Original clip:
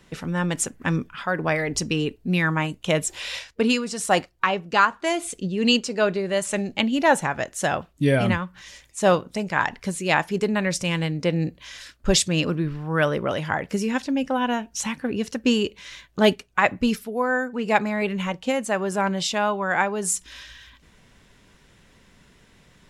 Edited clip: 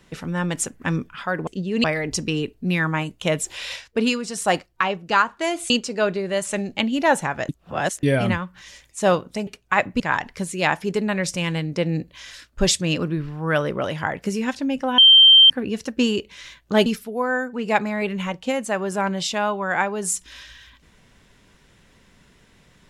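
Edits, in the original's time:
5.33–5.70 s: move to 1.47 s
7.49–8.03 s: reverse
14.45–14.97 s: bleep 3.14 kHz -7 dBFS
16.33–16.86 s: move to 9.47 s

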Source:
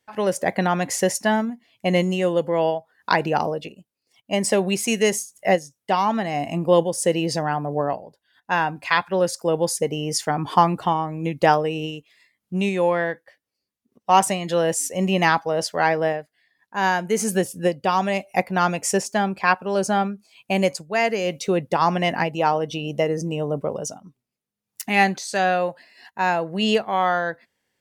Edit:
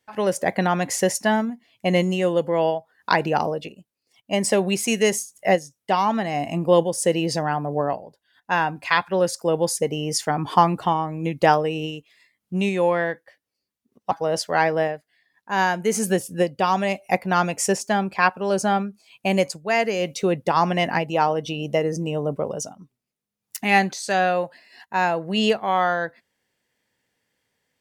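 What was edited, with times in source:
14.11–15.36 s: delete

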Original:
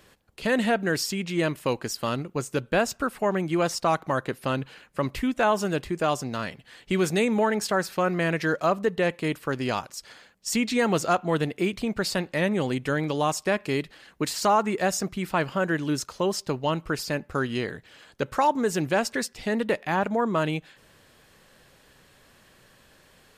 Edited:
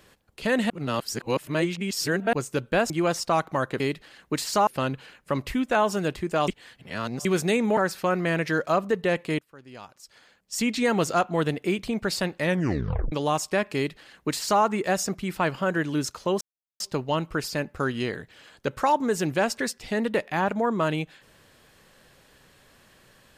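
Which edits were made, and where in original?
0.70–2.33 s: reverse
2.90–3.45 s: delete
6.16–6.93 s: reverse
7.45–7.71 s: delete
9.33–10.63 s: fade in quadratic, from -22 dB
12.43 s: tape stop 0.63 s
13.69–14.56 s: copy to 4.35 s
16.35 s: insert silence 0.39 s

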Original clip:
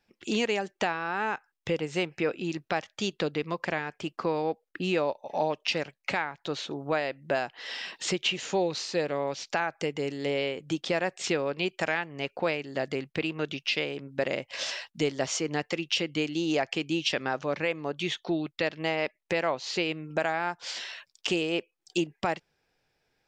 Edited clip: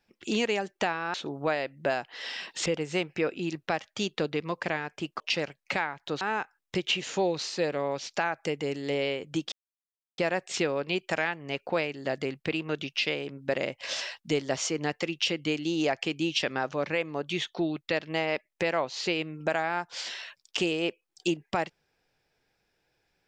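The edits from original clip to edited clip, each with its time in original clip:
1.14–1.68 s: swap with 6.59–8.11 s
4.22–5.58 s: delete
10.88 s: insert silence 0.66 s

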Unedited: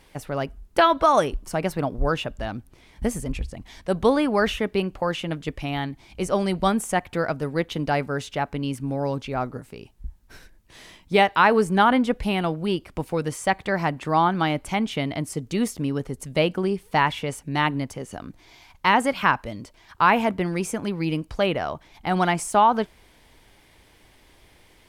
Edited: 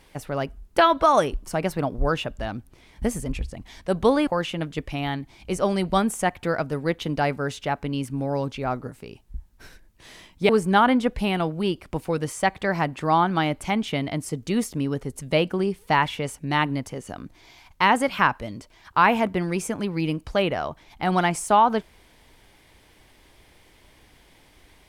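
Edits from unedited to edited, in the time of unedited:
4.27–4.97 s: delete
11.19–11.53 s: delete

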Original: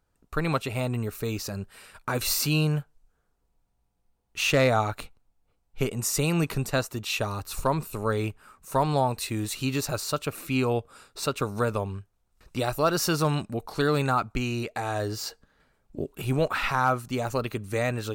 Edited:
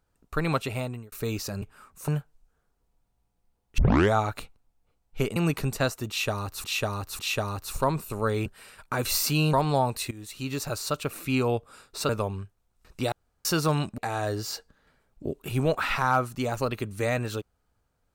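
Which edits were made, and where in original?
0.70–1.12 s: fade out
1.62–2.69 s: swap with 8.29–8.75 s
4.39 s: tape start 0.35 s
5.97–6.29 s: delete
7.02–7.57 s: loop, 3 plays
9.33–10.38 s: fade in equal-power, from -17.5 dB
11.31–11.65 s: delete
12.68–13.01 s: room tone
13.54–14.71 s: delete

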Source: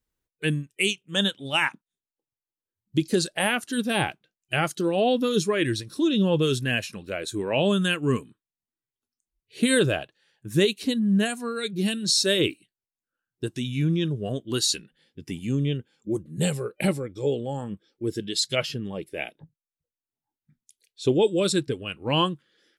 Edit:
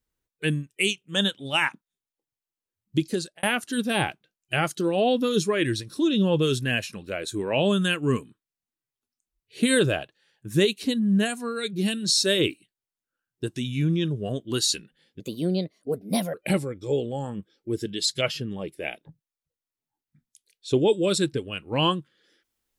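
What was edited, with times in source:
2.97–3.43 s: fade out
15.20–16.68 s: speed 130%

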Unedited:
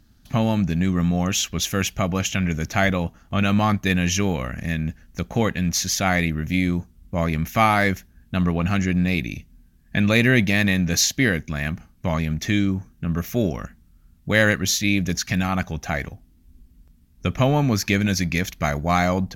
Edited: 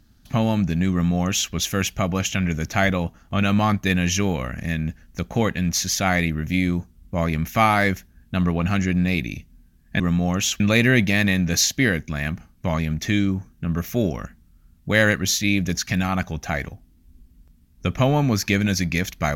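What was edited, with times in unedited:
0.92–1.52 s: copy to 10.00 s

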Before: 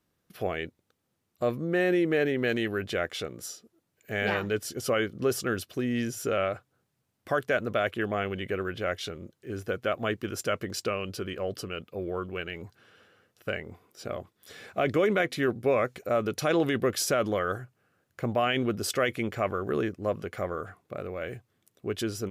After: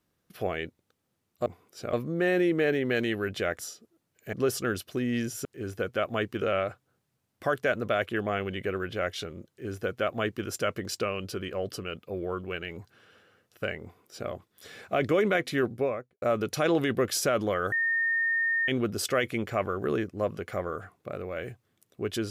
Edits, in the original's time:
3.12–3.41 s: delete
4.15–5.15 s: delete
9.34–10.31 s: copy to 6.27 s
13.68–14.15 s: copy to 1.46 s
15.48–16.07 s: studio fade out
17.57–18.53 s: bleep 1.83 kHz -23.5 dBFS

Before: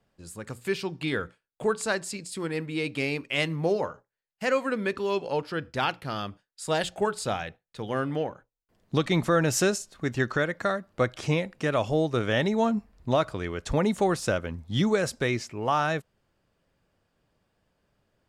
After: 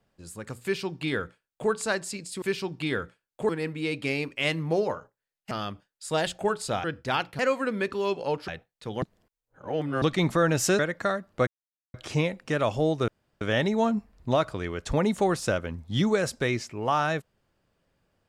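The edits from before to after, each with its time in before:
0.63–1.70 s: copy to 2.42 s
4.44–5.53 s: swap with 6.08–7.41 s
7.95–8.95 s: reverse
9.72–10.39 s: delete
11.07 s: insert silence 0.47 s
12.21 s: insert room tone 0.33 s

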